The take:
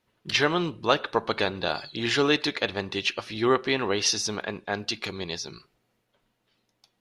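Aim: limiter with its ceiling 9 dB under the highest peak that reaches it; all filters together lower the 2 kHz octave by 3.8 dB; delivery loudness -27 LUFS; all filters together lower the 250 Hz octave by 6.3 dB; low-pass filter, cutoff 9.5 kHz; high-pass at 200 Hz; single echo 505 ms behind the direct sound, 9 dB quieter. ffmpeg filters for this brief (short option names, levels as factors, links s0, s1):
-af "highpass=200,lowpass=9500,equalizer=f=250:t=o:g=-7.5,equalizer=f=2000:t=o:g=-5,alimiter=limit=0.133:level=0:latency=1,aecho=1:1:505:0.355,volume=1.58"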